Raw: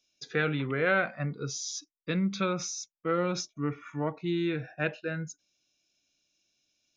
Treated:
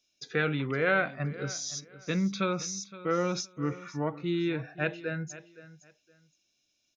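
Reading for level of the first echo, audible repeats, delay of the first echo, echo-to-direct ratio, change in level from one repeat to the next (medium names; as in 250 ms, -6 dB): -17.0 dB, 2, 517 ms, -17.0 dB, -13.0 dB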